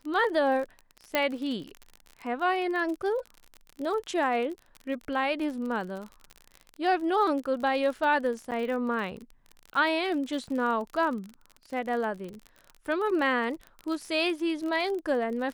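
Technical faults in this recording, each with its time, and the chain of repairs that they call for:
crackle 40 per s -34 dBFS
1.15 s: pop -11 dBFS
8.51–8.52 s: dropout 7.9 ms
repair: de-click; interpolate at 8.51 s, 7.9 ms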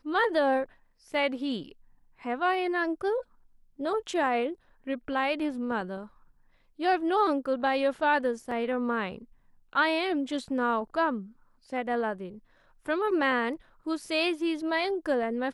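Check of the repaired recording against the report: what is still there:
1.15 s: pop

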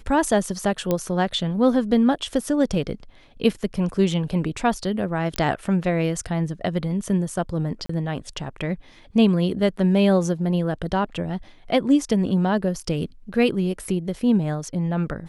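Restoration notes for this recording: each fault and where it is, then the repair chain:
0.91 s: pop -9 dBFS
5.36 s: pop -9 dBFS
7.86–7.89 s: dropout 34 ms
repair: de-click; interpolate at 7.86 s, 34 ms

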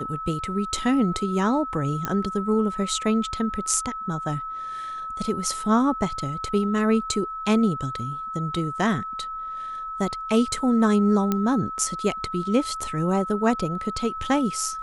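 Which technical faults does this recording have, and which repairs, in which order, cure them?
whine 1.3 kHz -30 dBFS
2.05 s: pop -11 dBFS
11.32 s: pop -10 dBFS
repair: de-click; band-stop 1.3 kHz, Q 30

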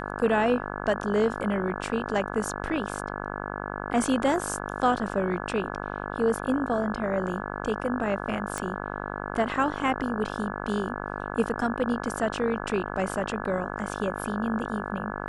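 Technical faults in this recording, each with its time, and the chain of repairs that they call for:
buzz 50 Hz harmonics 34 -34 dBFS
8.58 s: pop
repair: de-click; de-hum 50 Hz, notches 34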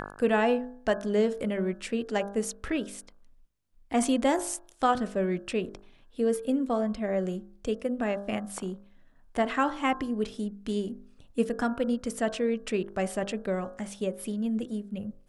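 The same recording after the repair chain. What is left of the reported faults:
nothing left

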